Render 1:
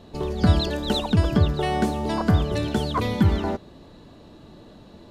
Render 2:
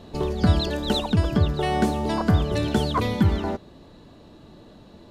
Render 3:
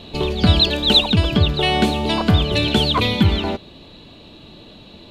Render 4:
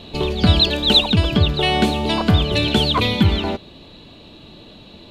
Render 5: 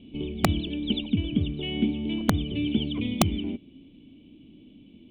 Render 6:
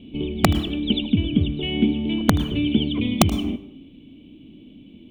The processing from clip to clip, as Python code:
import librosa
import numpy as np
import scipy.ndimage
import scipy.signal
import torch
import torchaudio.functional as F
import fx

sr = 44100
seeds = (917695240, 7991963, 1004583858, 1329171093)

y1 = fx.rider(x, sr, range_db=5, speed_s=0.5)
y2 = fx.band_shelf(y1, sr, hz=3100.0, db=11.5, octaves=1.1)
y2 = y2 * librosa.db_to_amplitude(4.0)
y3 = y2
y4 = fx.formant_cascade(y3, sr, vowel='i')
y4 = (np.mod(10.0 ** (10.5 / 20.0) * y4 + 1.0, 2.0) - 1.0) / 10.0 ** (10.5 / 20.0)
y5 = y4 + 10.0 ** (-19.5 / 20.0) * np.pad(y4, (int(78 * sr / 1000.0), 0))[:len(y4)]
y5 = fx.rev_plate(y5, sr, seeds[0], rt60_s=0.66, hf_ratio=0.65, predelay_ms=95, drr_db=17.5)
y5 = y5 * librosa.db_to_amplitude(5.5)